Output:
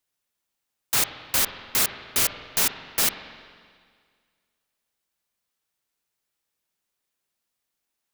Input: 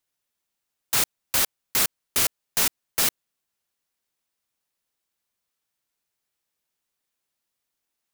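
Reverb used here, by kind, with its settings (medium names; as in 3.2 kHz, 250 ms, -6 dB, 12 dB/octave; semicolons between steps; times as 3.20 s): spring tank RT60 1.9 s, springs 43/48 ms, chirp 20 ms, DRR 8.5 dB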